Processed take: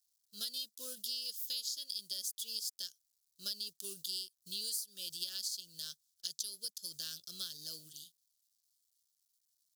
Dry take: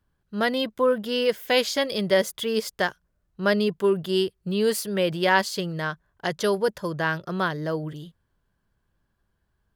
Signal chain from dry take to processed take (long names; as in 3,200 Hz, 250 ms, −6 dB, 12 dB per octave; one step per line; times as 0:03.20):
mu-law and A-law mismatch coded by A
inverse Chebyshev high-pass filter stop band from 2,300 Hz, stop band 40 dB
downward compressor 10 to 1, threshold −47 dBFS, peak gain reduction 18.5 dB
level +11 dB